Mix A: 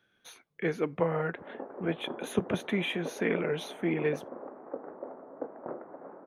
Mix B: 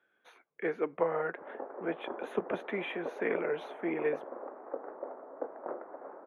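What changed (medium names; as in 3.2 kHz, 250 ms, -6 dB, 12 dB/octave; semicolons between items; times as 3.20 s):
background: remove distance through air 440 m; master: add three-band isolator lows -19 dB, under 300 Hz, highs -21 dB, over 2.4 kHz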